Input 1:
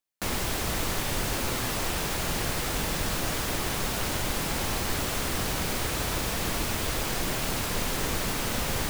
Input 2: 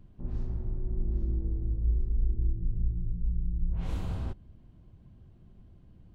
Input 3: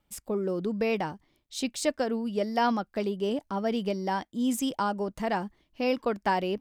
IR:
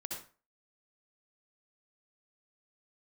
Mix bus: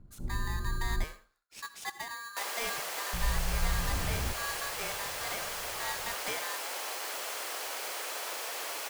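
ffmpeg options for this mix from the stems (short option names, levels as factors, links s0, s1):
-filter_complex "[0:a]highpass=f=480:w=0.5412,highpass=f=480:w=1.3066,bandreject=f=3700:w=24,adelay=2150,volume=0.501[s0];[1:a]lowpass=1200,volume=0.794,asplit=3[s1][s2][s3];[s1]atrim=end=1.04,asetpts=PTS-STARTPTS,afade=t=out:st=1.036:d=0.004:c=hsin[s4];[s2]atrim=start=1.04:end=3.13,asetpts=PTS-STARTPTS,volume=0[s5];[s3]atrim=start=3.13,asetpts=PTS-STARTPTS,afade=t=in:d=0.004:c=hsin[s6];[s4][s5][s6]concat=n=3:v=0:a=1,asplit=2[s7][s8];[s8]volume=0.178[s9];[2:a]aeval=exprs='val(0)*sgn(sin(2*PI*1400*n/s))':c=same,volume=0.2,asplit=2[s10][s11];[s11]volume=0.376[s12];[3:a]atrim=start_sample=2205[s13];[s9][s12]amix=inputs=2:normalize=0[s14];[s14][s13]afir=irnorm=-1:irlink=0[s15];[s0][s7][s10][s15]amix=inputs=4:normalize=0"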